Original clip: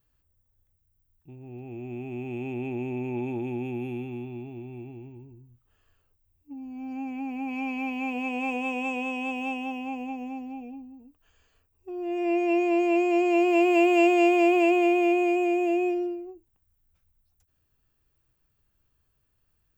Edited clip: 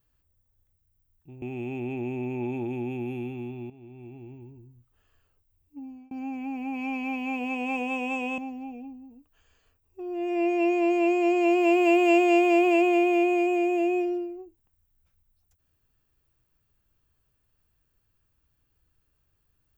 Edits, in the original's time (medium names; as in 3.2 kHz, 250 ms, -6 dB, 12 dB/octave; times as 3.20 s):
1.42–2.16 s: delete
4.44–5.12 s: fade in, from -12.5 dB
6.57–6.85 s: fade out
9.12–10.27 s: delete